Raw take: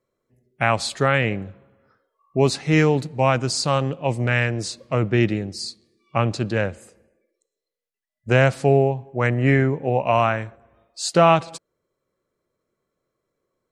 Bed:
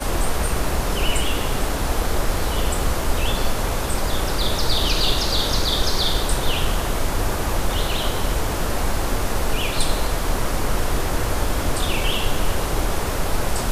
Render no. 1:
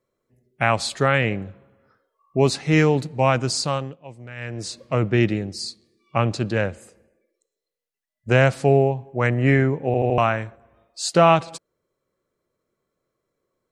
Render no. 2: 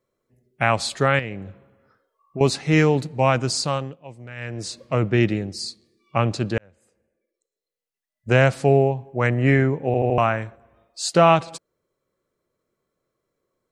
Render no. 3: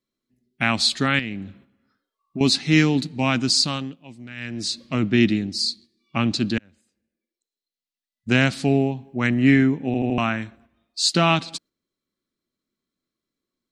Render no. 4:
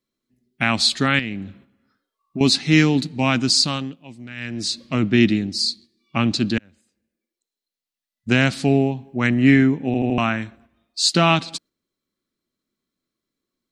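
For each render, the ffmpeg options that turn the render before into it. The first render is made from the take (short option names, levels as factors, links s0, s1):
-filter_complex "[0:a]asplit=7[s0][s1][s2][s3][s4][s5][s6];[s0]atrim=end=3.99,asetpts=PTS-STARTPTS,afade=t=out:st=3.56:d=0.43:silence=0.133352[s7];[s1]atrim=start=3.99:end=4.36,asetpts=PTS-STARTPTS,volume=0.133[s8];[s2]atrim=start=4.36:end=9.942,asetpts=PTS-STARTPTS,afade=t=in:d=0.43:silence=0.133352[s9];[s3]atrim=start=9.858:end=9.942[s10];[s4]atrim=start=9.858:end=9.942[s11];[s5]atrim=start=9.858:end=9.942[s12];[s6]atrim=start=10.178[s13];[s7][s8][s9]concat=n=3:v=0:a=1[s14];[s14][s10]acrossfade=d=0.004:c1=hsin:c2=hsin[s15];[s15][s11]acrossfade=d=0.004:c1=hsin:c2=hsin[s16];[s16][s12]acrossfade=d=0.004:c1=hsin:c2=hsin[s17];[s17][s13]acrossfade=d=0.004:c1=hsin:c2=hsin"
-filter_complex "[0:a]asettb=1/sr,asplit=3[s0][s1][s2];[s0]atrim=end=1.194[s3];[s1]atrim=start=1.19:end=2.41,asetpts=PTS-STARTPTS,afade=t=in:d=0.004:c=qsin,afade=t=out:st=1.216:d=0.004:c=qsin,acompressor=threshold=0.0251:ratio=2:attack=3.2:release=140:knee=1:detection=peak[s4];[s2]atrim=start=2.406[s5];[s3][s4]acrossfade=d=0.004:c1=hsin:c2=qsin[s6];[s6][s5]acrossfade=d=0.004:c1=qsin:c2=hsin,asettb=1/sr,asplit=3[s7][s8][s9];[s7]atrim=end=9.994[s10];[s8]atrim=start=9.99:end=10.42,asetpts=PTS-STARTPTS,afade=t=in:d=0.004:c=qsin,afade=t=out:st=0.426:d=0.004:c=qsin,equalizer=f=4200:w=1.5:g=-5.5[s11];[s9]atrim=start=10.416[s12];[s10][s11]acrossfade=d=0.004:c1=hsin:c2=qsin[s13];[s13][s12]acrossfade=d=0.004:c1=qsin:c2=hsin,asplit=2[s14][s15];[s14]atrim=end=6.58,asetpts=PTS-STARTPTS,afade=t=out:st=6.576:d=0.004:c=hsin[s16];[s15]atrim=start=6.58,asetpts=PTS-STARTPTS,afade=t=in:d=1.71[s17];[s16][s17]concat=n=2:v=0:a=1"
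-af "agate=range=0.447:threshold=0.00316:ratio=16:detection=peak,equalizer=f=125:t=o:w=1:g=-6,equalizer=f=250:t=o:w=1:g=11,equalizer=f=500:t=o:w=1:g=-12,equalizer=f=1000:t=o:w=1:g=-4,equalizer=f=4000:t=o:w=1:g=10"
-af "volume=1.26,alimiter=limit=0.708:level=0:latency=1"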